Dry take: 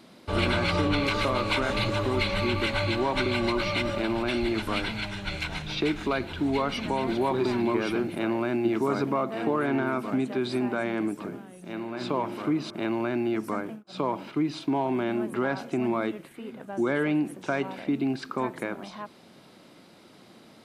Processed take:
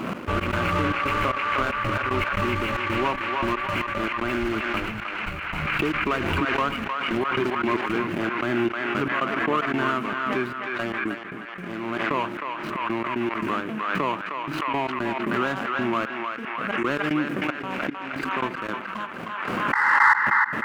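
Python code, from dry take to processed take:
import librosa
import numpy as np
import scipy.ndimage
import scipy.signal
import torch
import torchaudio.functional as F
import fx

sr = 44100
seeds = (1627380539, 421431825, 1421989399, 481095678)

p1 = scipy.ndimage.median_filter(x, 25, mode='constant')
p2 = fx.band_shelf(p1, sr, hz=1800.0, db=11.5, octaves=1.7)
p3 = fx.spec_paint(p2, sr, seeds[0], shape='noise', start_s=19.73, length_s=0.43, low_hz=810.0, high_hz=2100.0, level_db=-15.0)
p4 = 10.0 ** (-20.5 / 20.0) * np.tanh(p3 / 10.0 ** (-20.5 / 20.0))
p5 = p3 + (p4 * librosa.db_to_amplitude(-8.0))
p6 = fx.step_gate(p5, sr, bpm=114, pattern='x.x.xxx.xx..x.', floor_db=-24.0, edge_ms=4.5)
p7 = p6 + fx.echo_banded(p6, sr, ms=310, feedback_pct=49, hz=1700.0, wet_db=-3.0, dry=0)
p8 = fx.pre_swell(p7, sr, db_per_s=23.0)
y = p8 * librosa.db_to_amplitude(-2.0)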